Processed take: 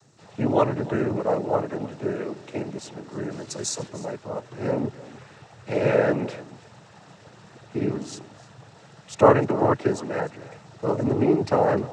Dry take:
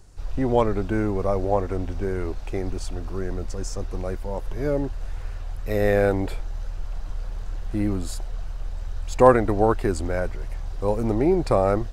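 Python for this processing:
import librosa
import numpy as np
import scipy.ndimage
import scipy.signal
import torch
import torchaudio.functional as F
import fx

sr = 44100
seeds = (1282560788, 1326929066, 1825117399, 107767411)

y = fx.high_shelf(x, sr, hz=fx.line((3.3, 3300.0), (3.87, 2000.0)), db=11.0, at=(3.3, 3.87), fade=0.02)
y = fx.noise_vocoder(y, sr, seeds[0], bands=12)
y = y + 10.0 ** (-18.5 / 20.0) * np.pad(y, (int(302 * sr / 1000.0), 0))[:len(y)]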